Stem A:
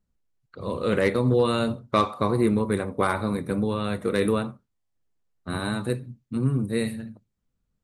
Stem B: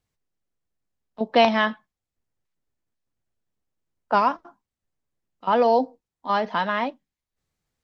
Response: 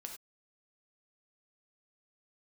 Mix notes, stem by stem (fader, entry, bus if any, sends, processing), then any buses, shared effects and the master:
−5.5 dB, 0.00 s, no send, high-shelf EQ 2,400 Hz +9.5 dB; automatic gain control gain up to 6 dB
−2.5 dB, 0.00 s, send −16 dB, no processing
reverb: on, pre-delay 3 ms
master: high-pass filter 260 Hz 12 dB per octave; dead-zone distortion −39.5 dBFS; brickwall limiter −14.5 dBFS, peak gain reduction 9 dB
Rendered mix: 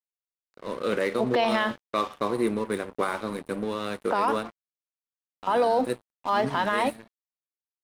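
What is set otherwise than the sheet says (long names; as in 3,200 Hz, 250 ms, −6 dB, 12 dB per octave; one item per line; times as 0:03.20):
stem A: missing high-shelf EQ 2,400 Hz +9.5 dB
stem B −2.5 dB → +5.0 dB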